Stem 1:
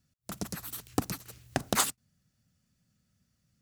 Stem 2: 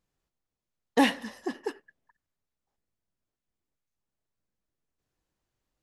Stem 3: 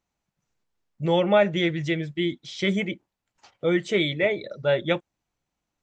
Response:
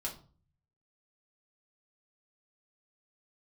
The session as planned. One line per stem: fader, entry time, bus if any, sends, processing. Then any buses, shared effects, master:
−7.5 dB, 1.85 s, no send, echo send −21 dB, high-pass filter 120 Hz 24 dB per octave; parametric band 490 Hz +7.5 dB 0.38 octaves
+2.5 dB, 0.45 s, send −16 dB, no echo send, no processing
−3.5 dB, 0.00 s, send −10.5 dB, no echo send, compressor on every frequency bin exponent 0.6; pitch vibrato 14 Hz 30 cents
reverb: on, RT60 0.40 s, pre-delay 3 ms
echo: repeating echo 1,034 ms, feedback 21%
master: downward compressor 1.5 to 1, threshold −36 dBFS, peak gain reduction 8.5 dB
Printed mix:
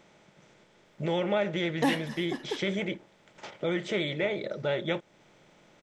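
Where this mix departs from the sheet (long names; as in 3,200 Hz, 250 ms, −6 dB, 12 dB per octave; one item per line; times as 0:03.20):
stem 1: muted
stem 2: entry 0.45 s → 0.85 s
stem 3: send off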